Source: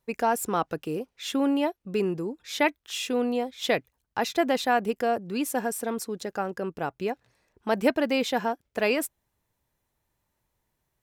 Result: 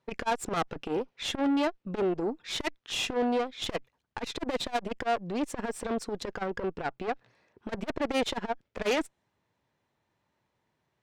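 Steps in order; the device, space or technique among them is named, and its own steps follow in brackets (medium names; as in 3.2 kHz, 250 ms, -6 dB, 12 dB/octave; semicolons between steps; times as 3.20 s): dynamic bell 8.5 kHz, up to +6 dB, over -50 dBFS, Q 1.4; valve radio (band-pass 120–4100 Hz; valve stage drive 29 dB, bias 0.65; transformer saturation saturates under 240 Hz); trim +7 dB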